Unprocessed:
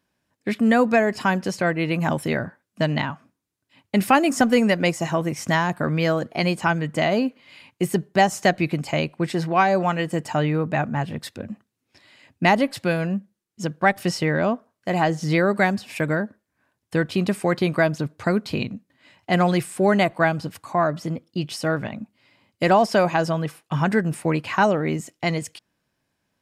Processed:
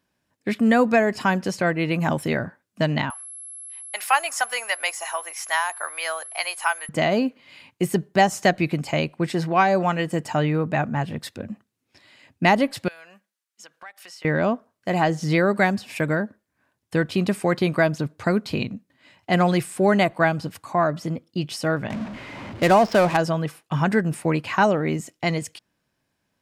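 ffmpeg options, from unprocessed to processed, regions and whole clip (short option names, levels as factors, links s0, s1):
-filter_complex "[0:a]asettb=1/sr,asplit=3[s0][s1][s2];[s0]atrim=end=3.104[s3];[s1]atrim=start=3.1:end=6.89,asetpts=PTS-STARTPTS,afade=t=in:d=0.004:c=qsin,afade=t=out:st=3.786:d=0.004:c=qsin,highpass=f=780:w=0.5412,highpass=f=780:w=1.3066,aeval=exprs='val(0)+0.0158*sin(2*PI*11000*n/s)':c=same[s4];[s2]atrim=start=6.886[s5];[s3][s4]acrossfade=d=0.004:c1=hsin:c2=qsin[s6];[s6][s5]acrossfade=d=0.004:c1=qsin:c2=hsin,asettb=1/sr,asplit=3[s7][s8][s9];[s7]atrim=end=12.884[s10];[s8]atrim=start=12.88:end=14.25,asetpts=PTS-STARTPTS,afade=t=in:d=0.004:c=qsin,afade=t=out:st=1.366:d=0.004:c=qsin,highpass=1100,acompressor=threshold=0.00631:ratio=3:attack=3.2:release=140:knee=1:detection=peak[s11];[s9]atrim=start=14.246[s12];[s10][s11]acrossfade=d=0.004:c1=hsin:c2=qsin[s13];[s13][s12]acrossfade=d=0.004:c1=qsin:c2=hsin,asettb=1/sr,asplit=3[s14][s15][s16];[s14]atrim=end=21.904[s17];[s15]atrim=start=21.9:end=23.17,asetpts=PTS-STARTPTS,afade=t=in:d=0.004:c=qsin,afade=t=out:st=1.266:d=0.004:c=qsin,aeval=exprs='val(0)+0.5*0.0422*sgn(val(0))':c=same,adynamicsmooth=sensitivity=4:basefreq=750[s18];[s16]atrim=start=23.166[s19];[s17][s18]acrossfade=d=0.004:c1=hsin:c2=qsin[s20];[s20][s19]acrossfade=d=0.004:c1=qsin:c2=hsin"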